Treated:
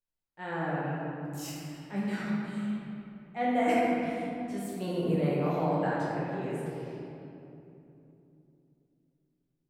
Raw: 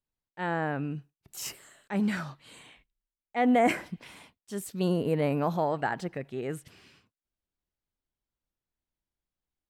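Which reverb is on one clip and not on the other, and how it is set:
rectangular room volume 130 cubic metres, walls hard, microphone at 1 metre
level −10 dB

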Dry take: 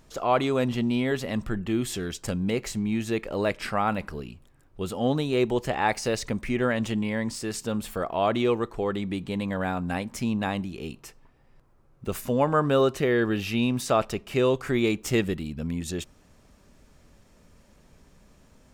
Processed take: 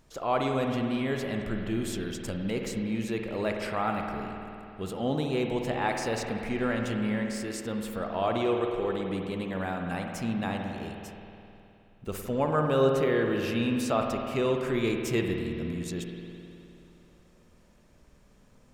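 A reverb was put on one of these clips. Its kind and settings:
spring reverb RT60 2.8 s, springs 52 ms, chirp 50 ms, DRR 2.5 dB
level −5 dB

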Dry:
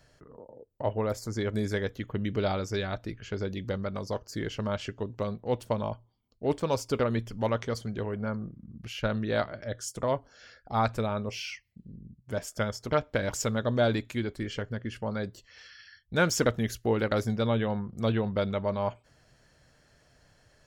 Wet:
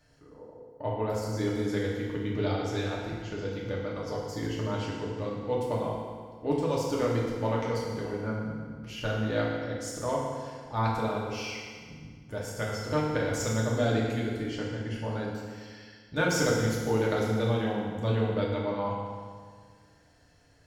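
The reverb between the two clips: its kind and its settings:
feedback delay network reverb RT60 1.8 s, low-frequency decay 1.1×, high-frequency decay 0.85×, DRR −4.5 dB
level −6 dB

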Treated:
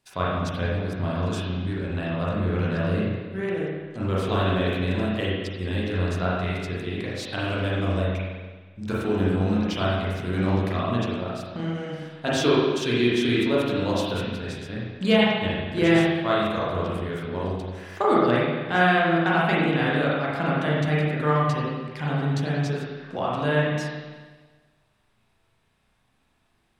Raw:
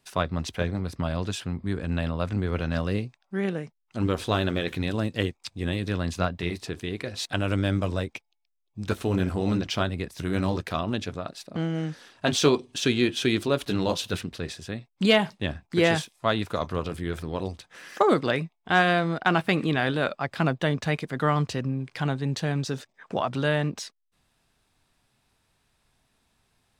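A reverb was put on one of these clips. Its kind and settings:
spring reverb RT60 1.4 s, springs 33/42 ms, chirp 60 ms, DRR −6.5 dB
level −5 dB

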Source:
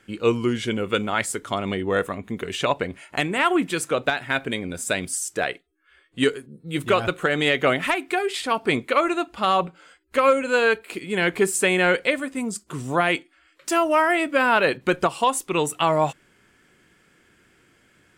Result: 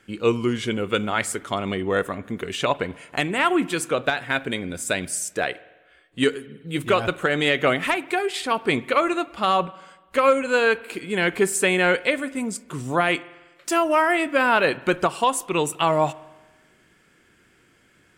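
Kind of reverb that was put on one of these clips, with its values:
spring reverb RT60 1.2 s, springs 48 ms, chirp 65 ms, DRR 19 dB

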